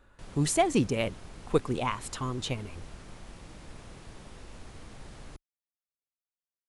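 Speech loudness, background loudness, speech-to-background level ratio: −30.0 LKFS, −49.0 LKFS, 19.0 dB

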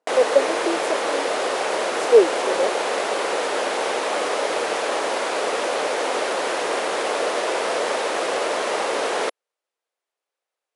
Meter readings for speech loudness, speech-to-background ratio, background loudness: −21.0 LKFS, 2.0 dB, −23.0 LKFS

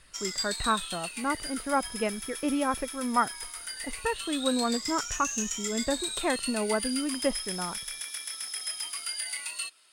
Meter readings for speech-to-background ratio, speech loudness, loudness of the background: 2.0 dB, −31.5 LKFS, −33.5 LKFS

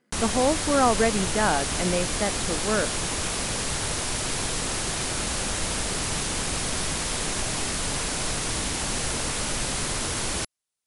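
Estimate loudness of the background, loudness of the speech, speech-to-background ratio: −26.5 LKFS, −25.5 LKFS, 1.0 dB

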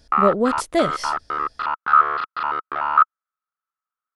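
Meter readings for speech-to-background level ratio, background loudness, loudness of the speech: −0.5 dB, −21.5 LKFS, −22.0 LKFS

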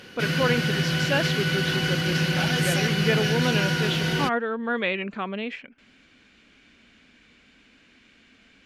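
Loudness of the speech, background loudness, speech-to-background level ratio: −28.5 LKFS, −24.0 LKFS, −4.5 dB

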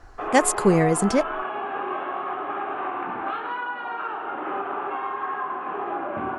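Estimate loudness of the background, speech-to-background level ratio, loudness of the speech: −29.5 LKFS, 8.5 dB, −21.0 LKFS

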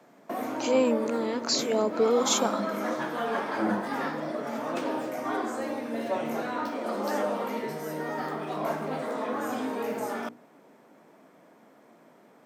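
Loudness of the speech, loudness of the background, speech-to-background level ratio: −26.5 LKFS, −31.5 LKFS, 5.0 dB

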